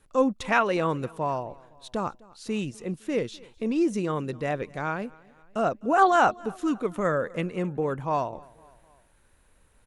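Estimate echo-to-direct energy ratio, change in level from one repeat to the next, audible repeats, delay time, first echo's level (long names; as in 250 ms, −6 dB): −22.5 dB, −5.5 dB, 2, 255 ms, −24.0 dB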